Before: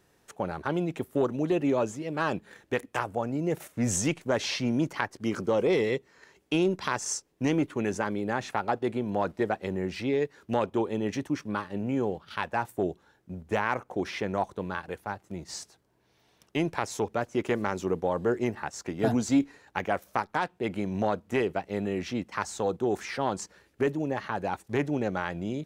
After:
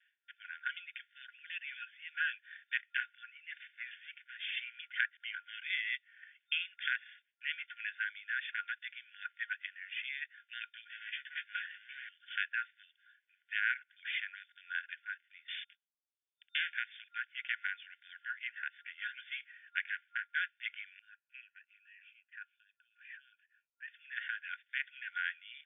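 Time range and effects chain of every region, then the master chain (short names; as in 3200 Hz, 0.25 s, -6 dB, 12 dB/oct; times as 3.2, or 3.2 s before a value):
3.94–4.57 high shelf 3500 Hz -9 dB + compressor 3:1, threshold -32 dBFS + hard clip -34 dBFS
10.9–12.09 G.711 law mismatch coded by mu + hard clip -29 dBFS + doubler 15 ms -8.5 dB
15.48–16.73 LPF 7800 Hz + bell 1800 Hz -15 dB 0.53 oct + sample leveller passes 5
19.84–20.29 air absorption 430 m + doubler 12 ms -9 dB + Doppler distortion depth 0.49 ms
20.99–23.88 tilt -3 dB/oct + vowel sweep a-e 2.6 Hz
whole clip: gate with hold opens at -55 dBFS; FFT band-pass 1400–3600 Hz; gain +1 dB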